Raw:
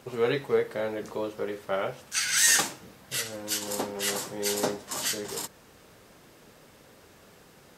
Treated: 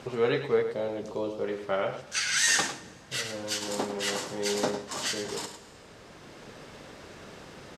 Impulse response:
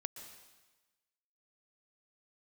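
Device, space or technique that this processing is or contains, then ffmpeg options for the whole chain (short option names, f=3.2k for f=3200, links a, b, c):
ducked reverb: -filter_complex "[0:a]asettb=1/sr,asplit=3[a][b][c];[a]atrim=end=0.624[d];[b]atrim=start=0.62:end=1.44,asetpts=PTS-STARTPTS,afade=t=in:d=0.004:c=qsin,afade=t=out:st=0.816:d=0.004:c=qsin,equalizer=f=1.7k:w=1.5:g=-11[e];[c]atrim=start=1.436[f];[d][e]acrossfade=d=0.004:c1=hsin:c2=qsin[g];[g][f]acrossfade=d=0.004:c1=qsin:c2=hsin,lowpass=6.3k,aecho=1:1:103:0.316,asplit=3[h][i][j];[1:a]atrim=start_sample=2205[k];[i][k]afir=irnorm=-1:irlink=0[l];[j]apad=whole_len=347227[m];[l][m]sidechaincompress=threshold=-44dB:ratio=8:attack=16:release=1080,volume=8.5dB[n];[h][n]amix=inputs=2:normalize=0,volume=-1.5dB"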